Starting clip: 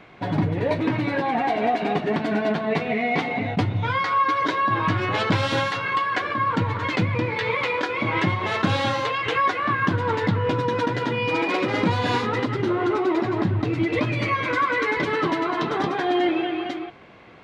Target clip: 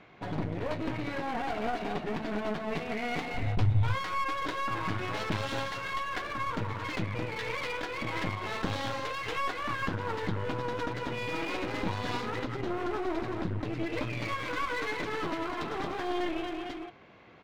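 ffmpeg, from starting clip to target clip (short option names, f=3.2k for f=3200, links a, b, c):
-filter_complex "[0:a]aresample=16000,aresample=44100,aeval=exprs='clip(val(0),-1,0.0237)':c=same,asettb=1/sr,asplit=3[a][b][c];[a]atrim=end=3.344[d];[b]atrim=start=3.34:end=3.95,asetpts=PTS-STARTPTS,afade=t=in:d=0.004:c=qsin,afade=t=out:st=0.606:d=0.004:c=qsin,lowshelf=f=130:t=q:w=1.5:g=12[e];[c]atrim=start=3.946[f];[d][e]acrossfade=d=0.004:c1=hsin:c2=qsin[g];[g][f]acrossfade=d=0.004:c1=qsin:c2=hsin,volume=-7.5dB"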